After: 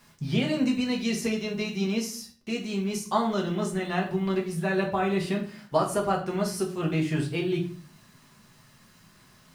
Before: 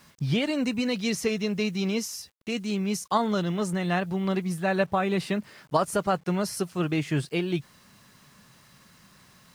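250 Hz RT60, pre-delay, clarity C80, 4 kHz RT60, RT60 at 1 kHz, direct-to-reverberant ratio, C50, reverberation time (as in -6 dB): 0.60 s, 5 ms, 14.0 dB, 0.35 s, 0.45 s, 0.0 dB, 9.5 dB, 0.45 s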